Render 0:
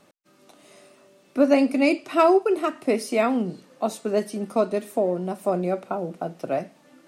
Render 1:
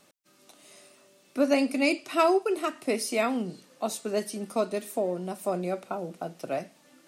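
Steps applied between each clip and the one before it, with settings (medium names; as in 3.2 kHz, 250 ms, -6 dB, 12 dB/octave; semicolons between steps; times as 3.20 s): treble shelf 2.5 kHz +10 dB; trim -6 dB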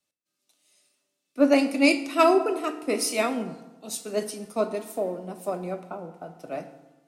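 time-frequency box 3.60–3.87 s, 550–2400 Hz -12 dB; FDN reverb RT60 1.9 s, low-frequency decay 1.35×, high-frequency decay 0.5×, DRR 7.5 dB; three bands expanded up and down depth 70%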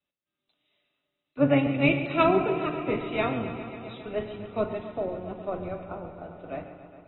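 octave divider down 1 oct, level -5 dB; bucket-brigade echo 135 ms, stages 4096, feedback 80%, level -12.5 dB; trim -3 dB; AAC 16 kbps 24 kHz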